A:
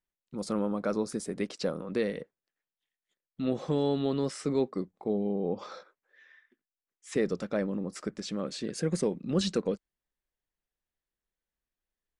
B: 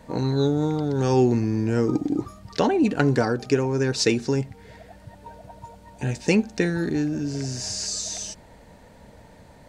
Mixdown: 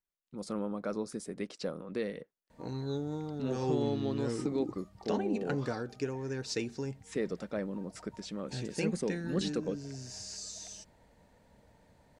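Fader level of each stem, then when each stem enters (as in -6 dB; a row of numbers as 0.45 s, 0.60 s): -5.5 dB, -14.0 dB; 0.00 s, 2.50 s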